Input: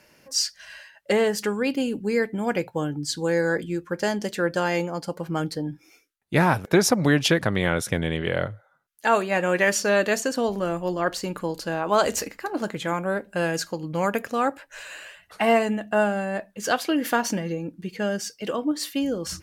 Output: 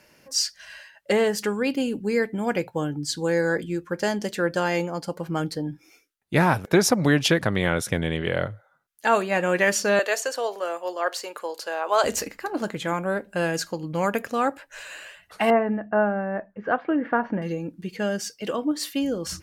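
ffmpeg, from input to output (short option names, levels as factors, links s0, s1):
-filter_complex "[0:a]asettb=1/sr,asplit=3[s0][s1][s2];[s0]atrim=end=9.994[s3];[s1]atrim=start=9.99:end=12.04,asetpts=PTS-STARTPTS,afade=t=in:d=0.004:c=qsin,afade=t=out:st=2.046:d=0.004:c=qsin,highpass=f=450:w=0.5412,highpass=f=450:w=1.3066[s4];[s2]atrim=start=12.036[s5];[s3][s4]acrossfade=d=0.004:c1=hsin:c2=qsin[s6];[s6][s5]acrossfade=d=0.004:c1=qsin:c2=hsin,asettb=1/sr,asplit=3[s7][s8][s9];[s7]atrim=end=15.504[s10];[s8]atrim=start=15.5:end=17.42,asetpts=PTS-STARTPTS,afade=t=in:d=0.004:c=qsin,afade=t=out:st=1.916:d=0.004:c=qsin,lowpass=f=1800:w=0.5412,lowpass=f=1800:w=1.3066[s11];[s9]atrim=start=17.416[s12];[s10][s11]acrossfade=d=0.004:c1=hsin:c2=qsin[s13];[s13][s12]acrossfade=d=0.004:c1=qsin:c2=hsin"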